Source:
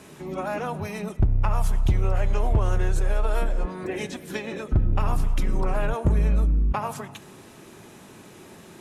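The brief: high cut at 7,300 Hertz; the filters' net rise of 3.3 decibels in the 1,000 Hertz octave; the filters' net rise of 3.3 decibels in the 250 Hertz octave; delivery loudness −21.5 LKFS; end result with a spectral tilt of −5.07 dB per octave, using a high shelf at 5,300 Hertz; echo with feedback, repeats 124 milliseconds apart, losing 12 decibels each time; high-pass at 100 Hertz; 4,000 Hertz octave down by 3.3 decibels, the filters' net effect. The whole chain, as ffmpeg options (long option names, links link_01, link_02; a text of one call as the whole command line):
ffmpeg -i in.wav -af "highpass=100,lowpass=7300,equalizer=frequency=250:width_type=o:gain=5,equalizer=frequency=1000:width_type=o:gain=4,equalizer=frequency=4000:width_type=o:gain=-7,highshelf=frequency=5300:gain=6,aecho=1:1:124|248|372:0.251|0.0628|0.0157,volume=6.5dB" out.wav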